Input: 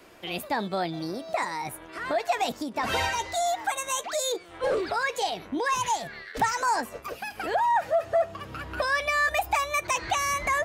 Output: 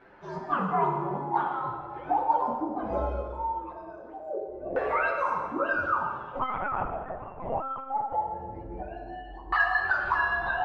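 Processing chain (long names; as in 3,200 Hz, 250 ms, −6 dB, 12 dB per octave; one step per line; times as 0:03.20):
partials spread apart or drawn together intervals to 126%
dense smooth reverb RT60 1.7 s, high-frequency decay 0.8×, DRR 0.5 dB
0:06.40–0:08.13: linear-prediction vocoder at 8 kHz pitch kept
auto-filter low-pass saw down 0.21 Hz 340–1,600 Hz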